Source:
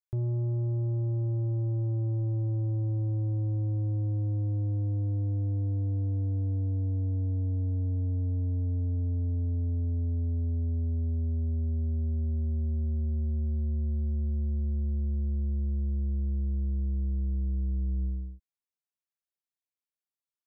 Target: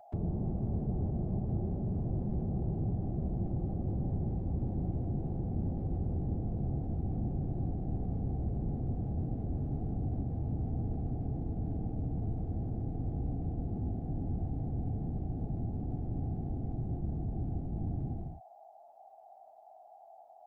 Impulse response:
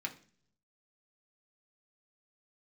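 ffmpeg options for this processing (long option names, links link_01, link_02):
-filter_complex "[0:a]acrossover=split=93|260[link_01][link_02][link_03];[link_01]acompressor=threshold=-45dB:ratio=4[link_04];[link_02]acompressor=threshold=-40dB:ratio=4[link_05];[link_03]acompressor=threshold=-48dB:ratio=4[link_06];[link_04][link_05][link_06]amix=inputs=3:normalize=0,aeval=exprs='val(0)+0.00178*sin(2*PI*730*n/s)':channel_layout=same,afftfilt=real='hypot(re,im)*cos(2*PI*random(0))':imag='hypot(re,im)*sin(2*PI*random(1))':win_size=512:overlap=0.75,volume=8.5dB"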